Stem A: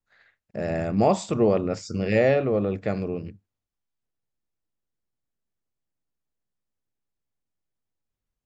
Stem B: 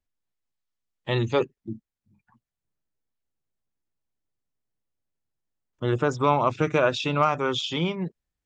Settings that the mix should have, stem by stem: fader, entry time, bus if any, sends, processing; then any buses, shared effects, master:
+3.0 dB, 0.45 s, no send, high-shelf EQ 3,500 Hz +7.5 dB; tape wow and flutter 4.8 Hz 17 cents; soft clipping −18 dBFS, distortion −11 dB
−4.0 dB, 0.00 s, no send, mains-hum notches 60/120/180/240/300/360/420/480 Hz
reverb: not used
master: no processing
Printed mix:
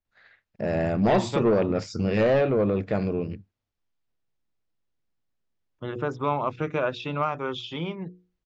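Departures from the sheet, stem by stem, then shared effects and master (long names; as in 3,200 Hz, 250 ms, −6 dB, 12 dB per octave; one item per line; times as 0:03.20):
stem A: entry 0.45 s → 0.05 s
master: extra high-frequency loss of the air 160 metres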